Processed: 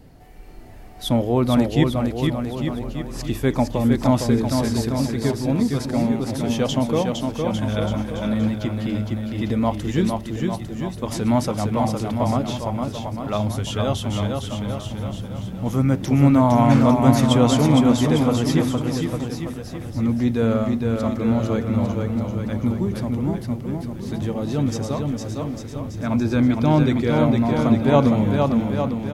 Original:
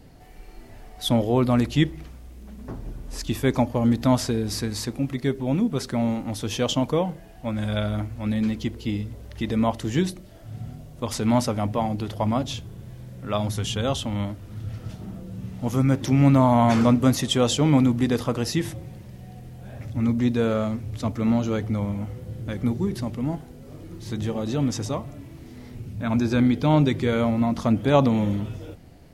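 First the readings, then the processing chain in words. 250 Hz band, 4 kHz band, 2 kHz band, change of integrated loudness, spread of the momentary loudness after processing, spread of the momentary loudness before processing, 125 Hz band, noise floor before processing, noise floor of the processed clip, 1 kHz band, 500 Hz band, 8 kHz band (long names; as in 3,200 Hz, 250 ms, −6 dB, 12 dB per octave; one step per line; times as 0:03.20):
+3.5 dB, +0.5 dB, +2.0 dB, +2.5 dB, 12 LU, 20 LU, +3.5 dB, −44 dBFS, −34 dBFS, +3.0 dB, +3.5 dB, +0.5 dB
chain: parametric band 5,300 Hz −3.5 dB 2.8 octaves
on a send: bouncing-ball delay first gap 460 ms, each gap 0.85×, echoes 5
on the sum: level +1.5 dB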